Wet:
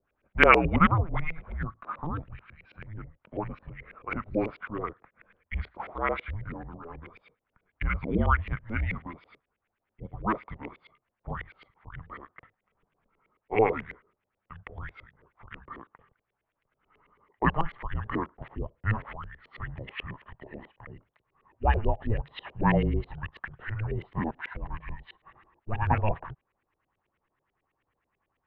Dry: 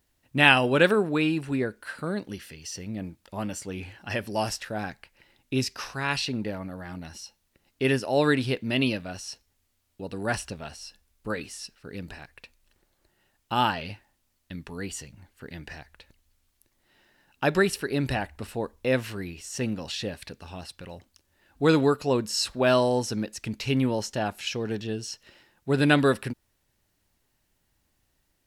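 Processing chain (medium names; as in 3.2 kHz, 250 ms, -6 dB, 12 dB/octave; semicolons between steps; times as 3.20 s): pitch bend over the whole clip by -5 st starting unshifted; mistuned SSB -320 Hz 230–3600 Hz; LFO low-pass saw up 9.2 Hz 410–2600 Hz; trim -1 dB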